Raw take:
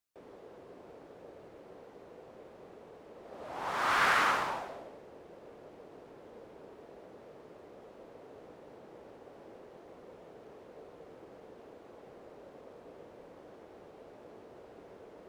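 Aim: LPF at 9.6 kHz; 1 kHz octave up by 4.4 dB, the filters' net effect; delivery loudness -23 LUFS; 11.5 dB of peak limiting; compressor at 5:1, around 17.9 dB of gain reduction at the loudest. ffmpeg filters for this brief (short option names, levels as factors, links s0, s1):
-af "lowpass=9600,equalizer=f=1000:t=o:g=5.5,acompressor=threshold=0.00891:ratio=5,volume=25.1,alimiter=limit=0.224:level=0:latency=1"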